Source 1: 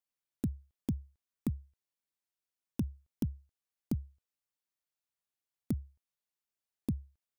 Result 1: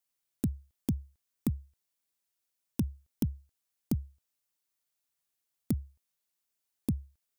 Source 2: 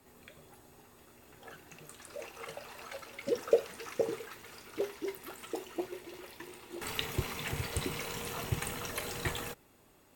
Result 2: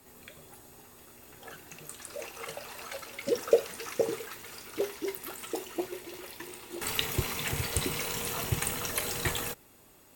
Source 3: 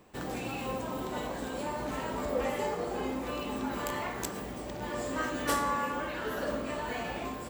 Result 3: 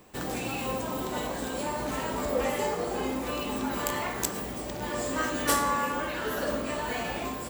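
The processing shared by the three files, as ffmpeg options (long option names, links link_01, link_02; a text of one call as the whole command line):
ffmpeg -i in.wav -af "highshelf=frequency=4700:gain=7,volume=3dB" out.wav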